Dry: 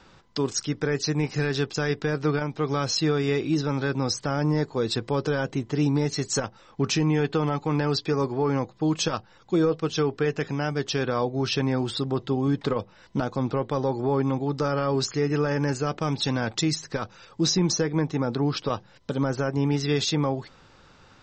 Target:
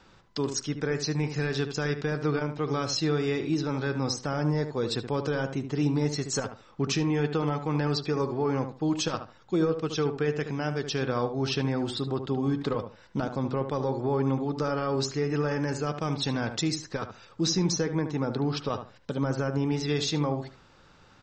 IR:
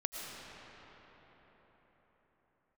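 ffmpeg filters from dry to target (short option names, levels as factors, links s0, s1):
-filter_complex "[0:a]asplit=2[s0][s1];[s1]adelay=74,lowpass=f=1800:p=1,volume=0.398,asplit=2[s2][s3];[s3]adelay=74,lowpass=f=1800:p=1,volume=0.22,asplit=2[s4][s5];[s5]adelay=74,lowpass=f=1800:p=1,volume=0.22[s6];[s0][s2][s4][s6]amix=inputs=4:normalize=0,asplit=2[s7][s8];[1:a]atrim=start_sample=2205,atrim=end_sample=4410[s9];[s8][s9]afir=irnorm=-1:irlink=0,volume=0.224[s10];[s7][s10]amix=inputs=2:normalize=0,volume=0.562"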